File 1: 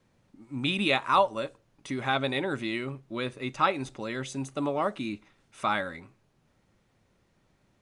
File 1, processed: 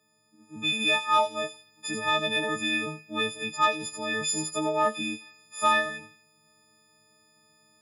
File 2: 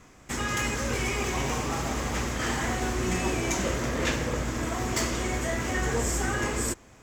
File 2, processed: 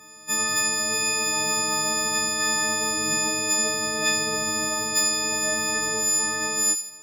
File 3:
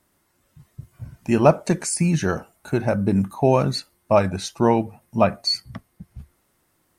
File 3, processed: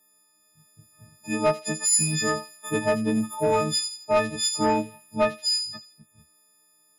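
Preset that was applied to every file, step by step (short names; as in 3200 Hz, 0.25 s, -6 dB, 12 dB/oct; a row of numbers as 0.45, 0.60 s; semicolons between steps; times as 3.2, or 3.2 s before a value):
frequency quantiser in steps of 6 st; HPF 150 Hz 12 dB/oct; vocal rider within 3 dB 0.5 s; soft clip -8 dBFS; thin delay 84 ms, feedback 41%, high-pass 4500 Hz, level -4.5 dB; normalise peaks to -12 dBFS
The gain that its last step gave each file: -2.0, -3.0, -5.5 dB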